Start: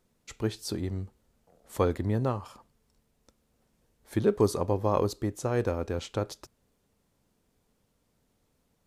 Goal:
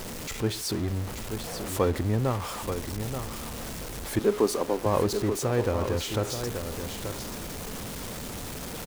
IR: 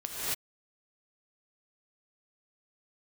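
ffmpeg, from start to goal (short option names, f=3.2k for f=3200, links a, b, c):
-filter_complex "[0:a]aeval=exprs='val(0)+0.5*0.0282*sgn(val(0))':c=same,asettb=1/sr,asplit=3[a][b][c];[a]atrim=end=4.194[d];[b]atrim=start=4.19:end=4.86,asetpts=PTS-STARTPTS,afade=t=in:d=0.004:c=qsin,afade=t=out:st=0.666:d=0.004:c=qsin,highpass=f=210:w=0.5412,highpass=f=210:w=1.3066[e];[c]atrim=start=4.856[f];[d][e]acrossfade=d=0.004:c1=hsin:c2=qsin[g];[g][f]acrossfade=d=0.004:c1=qsin:c2=hsin,asplit=2[h][i];[i]aecho=0:1:882:0.398[j];[h][j]amix=inputs=2:normalize=0"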